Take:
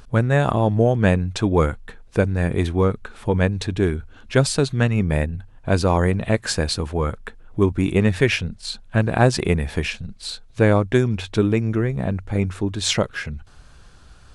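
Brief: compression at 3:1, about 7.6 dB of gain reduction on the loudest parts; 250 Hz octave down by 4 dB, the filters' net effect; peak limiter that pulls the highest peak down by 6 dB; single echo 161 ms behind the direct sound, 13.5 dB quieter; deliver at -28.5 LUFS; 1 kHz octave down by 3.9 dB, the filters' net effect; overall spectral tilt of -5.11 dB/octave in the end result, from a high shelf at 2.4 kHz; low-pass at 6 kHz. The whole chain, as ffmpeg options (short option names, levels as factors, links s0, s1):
-af "lowpass=6000,equalizer=f=250:t=o:g=-5.5,equalizer=f=1000:t=o:g=-6,highshelf=f=2400:g=5.5,acompressor=threshold=0.0631:ratio=3,alimiter=limit=0.133:level=0:latency=1,aecho=1:1:161:0.211,volume=1.12"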